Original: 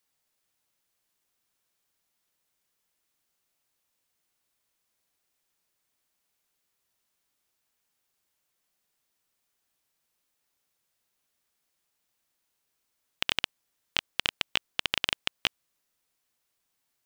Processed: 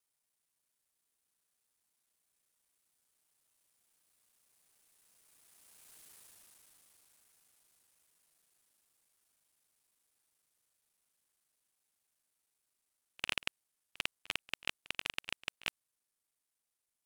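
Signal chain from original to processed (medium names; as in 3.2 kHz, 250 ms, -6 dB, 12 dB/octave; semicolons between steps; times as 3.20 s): time reversed locally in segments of 36 ms; Doppler pass-by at 6.06 s, 31 m/s, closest 10 m; peaking EQ 9.5 kHz +8.5 dB 0.65 oct; pre-echo 46 ms -20 dB; trim +18 dB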